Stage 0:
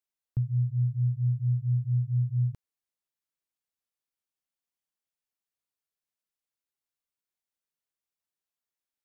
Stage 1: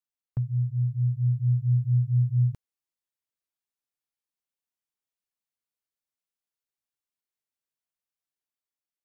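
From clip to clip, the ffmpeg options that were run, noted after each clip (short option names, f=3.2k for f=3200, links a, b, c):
-af "agate=range=-7dB:threshold=-36dB:ratio=16:detection=peak,dynaudnorm=f=830:g=3:m=4dB"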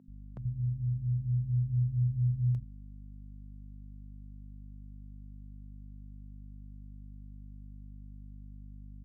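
-filter_complex "[0:a]aeval=exprs='val(0)+0.00891*(sin(2*PI*50*n/s)+sin(2*PI*2*50*n/s)/2+sin(2*PI*3*50*n/s)/3+sin(2*PI*4*50*n/s)/4+sin(2*PI*5*50*n/s)/5)':c=same,acrossover=split=160[a][b];[a]adelay=80[c];[c][b]amix=inputs=2:normalize=0,volume=-4.5dB"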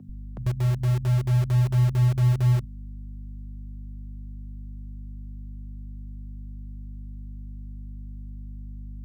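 -filter_complex "[0:a]acrossover=split=110|120|160[a][b][c][d];[a]acompressor=mode=upward:threshold=-42dB:ratio=2.5[e];[b]acrusher=bits=6:mix=0:aa=0.000001[f];[e][f][c][d]amix=inputs=4:normalize=0,volume=8.5dB"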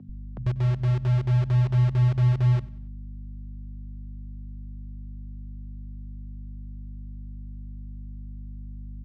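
-af "lowpass=4k,aecho=1:1:94|188|282:0.0794|0.035|0.0154"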